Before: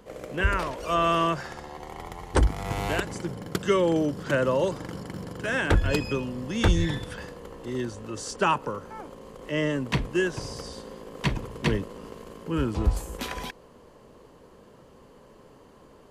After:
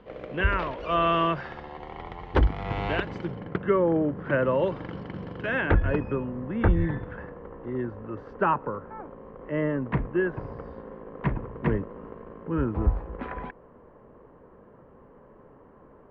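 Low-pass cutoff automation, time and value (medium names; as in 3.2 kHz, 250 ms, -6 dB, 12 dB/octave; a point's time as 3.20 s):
low-pass 24 dB/octave
3.29 s 3.4 kHz
3.80 s 1.6 kHz
4.84 s 3.2 kHz
5.41 s 3.2 kHz
6.02 s 1.8 kHz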